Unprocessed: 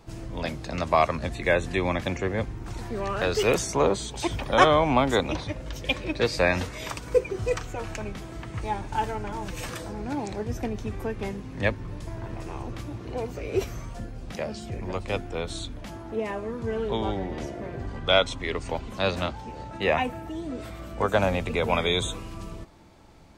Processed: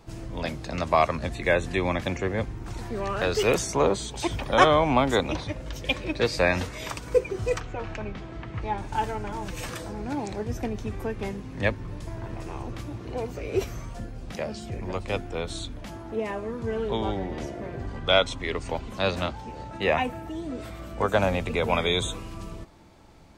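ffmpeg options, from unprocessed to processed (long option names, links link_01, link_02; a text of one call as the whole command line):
ffmpeg -i in.wav -filter_complex "[0:a]asettb=1/sr,asplit=3[link_01][link_02][link_03];[link_01]atrim=end=7.604[link_04];[link_02]atrim=start=7.6:end=8.78,asetpts=PTS-STARTPTS,afade=type=in:duration=0.004:curve=qsin,afade=type=out:start_time=1.176:duration=0.004:curve=qsin,lowpass=3700[link_05];[link_03]atrim=start=8.776[link_06];[link_04][link_05]acrossfade=duration=0.004:curve1=hsin:curve2=qsin[link_07];[link_07][link_06]acrossfade=duration=0.004:curve1=qsin:curve2=hsin" out.wav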